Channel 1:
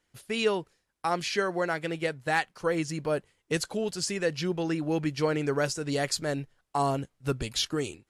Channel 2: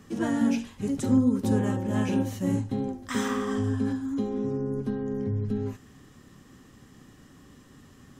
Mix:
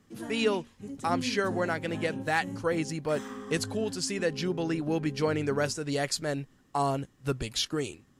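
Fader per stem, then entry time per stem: -1.0 dB, -12.0 dB; 0.00 s, 0.00 s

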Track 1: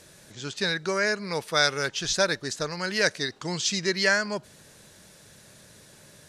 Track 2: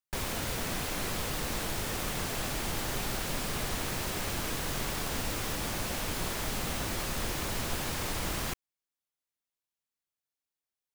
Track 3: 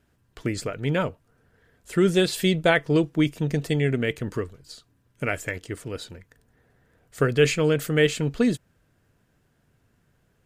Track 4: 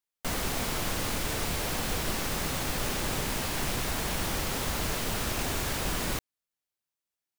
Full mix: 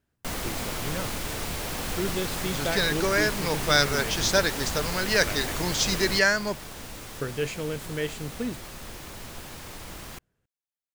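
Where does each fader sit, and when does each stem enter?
+1.0 dB, -7.0 dB, -10.5 dB, -1.0 dB; 2.15 s, 1.65 s, 0.00 s, 0.00 s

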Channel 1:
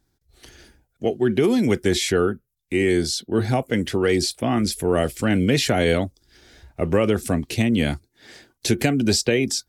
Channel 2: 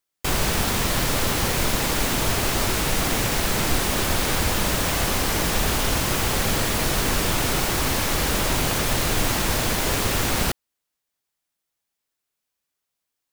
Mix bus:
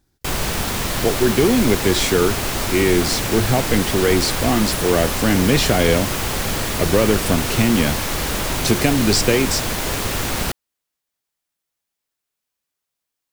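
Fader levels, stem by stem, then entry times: +2.5 dB, 0.0 dB; 0.00 s, 0.00 s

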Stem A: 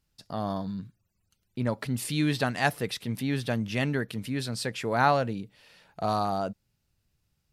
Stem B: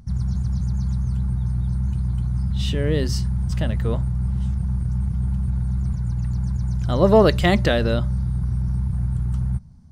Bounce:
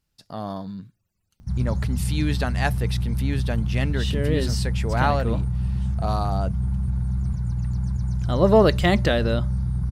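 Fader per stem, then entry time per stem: 0.0 dB, -1.5 dB; 0.00 s, 1.40 s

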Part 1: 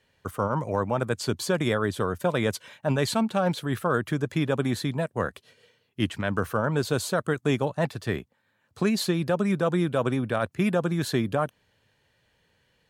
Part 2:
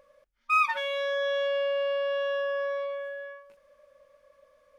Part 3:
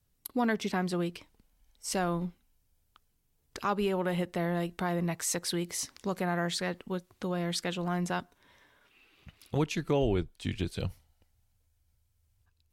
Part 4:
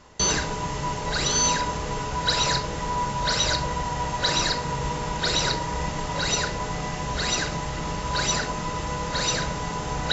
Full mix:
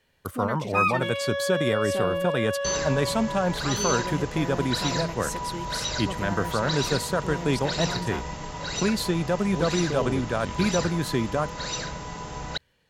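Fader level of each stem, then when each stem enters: -0.5 dB, 0.0 dB, -3.5 dB, -6.5 dB; 0.00 s, 0.25 s, 0.00 s, 2.45 s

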